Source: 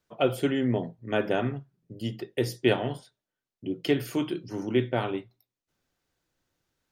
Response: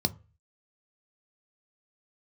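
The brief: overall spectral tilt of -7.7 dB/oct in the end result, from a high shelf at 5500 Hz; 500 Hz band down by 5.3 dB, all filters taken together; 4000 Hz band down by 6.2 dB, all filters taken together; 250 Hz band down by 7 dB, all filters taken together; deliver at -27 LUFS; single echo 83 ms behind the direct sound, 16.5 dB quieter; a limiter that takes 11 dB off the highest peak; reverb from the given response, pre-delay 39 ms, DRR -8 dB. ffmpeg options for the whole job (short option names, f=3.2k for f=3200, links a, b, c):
-filter_complex "[0:a]equalizer=f=250:t=o:g=-7.5,equalizer=f=500:t=o:g=-4,equalizer=f=4k:t=o:g=-6,highshelf=f=5.5k:g=-8,alimiter=limit=-23.5dB:level=0:latency=1,aecho=1:1:83:0.15,asplit=2[a][b];[1:a]atrim=start_sample=2205,adelay=39[c];[b][c]afir=irnorm=-1:irlink=0,volume=1dB[d];[a][d]amix=inputs=2:normalize=0,volume=-4.5dB"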